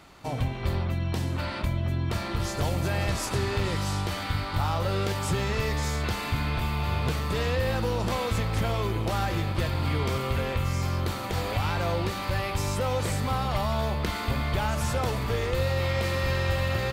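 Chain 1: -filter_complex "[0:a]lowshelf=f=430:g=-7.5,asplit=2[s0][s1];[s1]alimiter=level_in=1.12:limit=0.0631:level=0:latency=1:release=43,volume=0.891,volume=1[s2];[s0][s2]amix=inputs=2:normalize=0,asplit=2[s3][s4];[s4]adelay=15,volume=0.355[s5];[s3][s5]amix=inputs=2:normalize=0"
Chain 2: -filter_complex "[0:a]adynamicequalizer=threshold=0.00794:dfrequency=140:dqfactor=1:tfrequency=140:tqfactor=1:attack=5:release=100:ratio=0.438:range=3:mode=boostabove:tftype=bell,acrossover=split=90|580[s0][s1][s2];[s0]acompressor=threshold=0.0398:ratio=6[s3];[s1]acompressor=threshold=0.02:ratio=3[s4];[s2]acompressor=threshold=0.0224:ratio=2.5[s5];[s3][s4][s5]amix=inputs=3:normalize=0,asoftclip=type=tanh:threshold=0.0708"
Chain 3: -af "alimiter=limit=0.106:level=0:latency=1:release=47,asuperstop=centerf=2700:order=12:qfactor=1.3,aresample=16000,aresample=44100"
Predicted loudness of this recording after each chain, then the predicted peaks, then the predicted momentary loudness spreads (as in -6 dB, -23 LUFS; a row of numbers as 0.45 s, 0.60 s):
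-26.0 LUFS, -31.5 LUFS, -30.0 LUFS; -12.5 dBFS, -23.0 dBFS, -18.5 dBFS; 4 LU, 2 LU, 2 LU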